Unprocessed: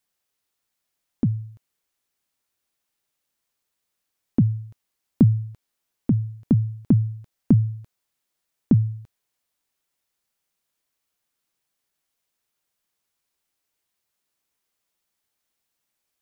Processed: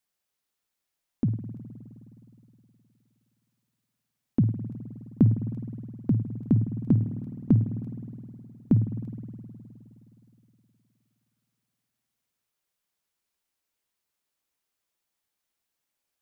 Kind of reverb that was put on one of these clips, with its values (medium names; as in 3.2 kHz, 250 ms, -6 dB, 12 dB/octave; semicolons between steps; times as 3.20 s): spring tank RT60 3.1 s, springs 52 ms, chirp 55 ms, DRR 7.5 dB; trim -4 dB